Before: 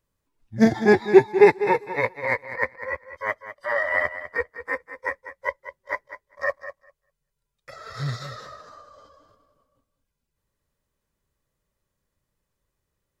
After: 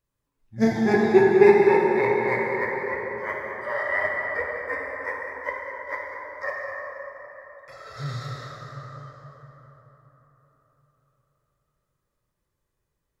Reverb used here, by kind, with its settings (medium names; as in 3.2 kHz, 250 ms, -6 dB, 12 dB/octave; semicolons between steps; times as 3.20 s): plate-style reverb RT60 4.4 s, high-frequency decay 0.45×, pre-delay 0 ms, DRR -3.5 dB; trim -5.5 dB